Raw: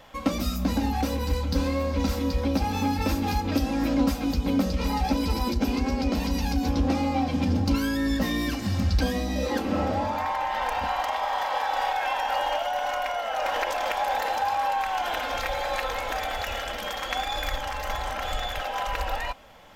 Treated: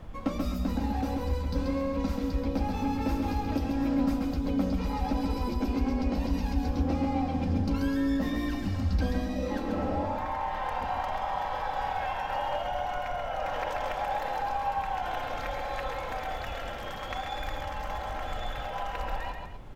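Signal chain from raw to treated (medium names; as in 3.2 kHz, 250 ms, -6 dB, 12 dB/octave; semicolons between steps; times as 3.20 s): loudspeakers at several distances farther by 46 m -5 dB, 86 m -12 dB; added noise brown -36 dBFS; treble shelf 2.4 kHz -9.5 dB; trim -5 dB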